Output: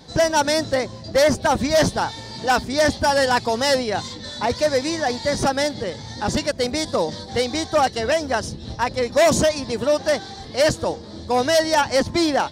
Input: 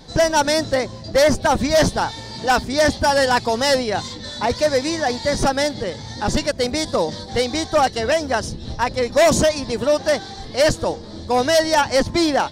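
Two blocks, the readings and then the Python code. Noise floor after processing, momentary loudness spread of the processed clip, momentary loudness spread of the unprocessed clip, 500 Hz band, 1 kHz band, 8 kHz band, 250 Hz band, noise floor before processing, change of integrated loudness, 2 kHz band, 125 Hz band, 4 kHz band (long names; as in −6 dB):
−37 dBFS, 8 LU, 8 LU, −1.5 dB, −1.5 dB, −1.5 dB, −1.5 dB, −35 dBFS, −1.5 dB, −1.5 dB, −2.0 dB, −1.5 dB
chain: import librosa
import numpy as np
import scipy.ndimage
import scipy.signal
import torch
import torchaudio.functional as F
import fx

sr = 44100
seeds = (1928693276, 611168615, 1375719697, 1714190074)

y = scipy.signal.sosfilt(scipy.signal.butter(2, 55.0, 'highpass', fs=sr, output='sos'), x)
y = F.gain(torch.from_numpy(y), -1.5).numpy()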